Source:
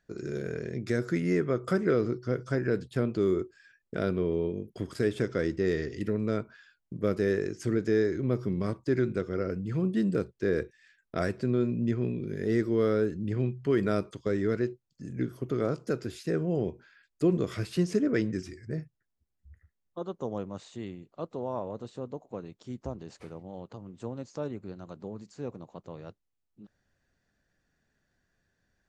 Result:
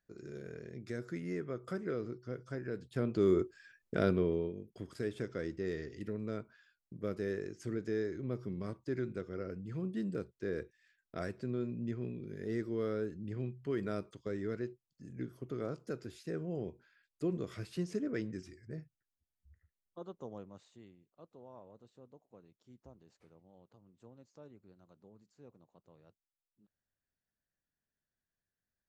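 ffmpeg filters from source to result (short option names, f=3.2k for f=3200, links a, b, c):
-af "volume=-0.5dB,afade=t=in:st=2.79:d=0.6:silence=0.266073,afade=t=out:st=4.1:d=0.45:silence=0.334965,afade=t=out:st=20.08:d=0.86:silence=0.334965"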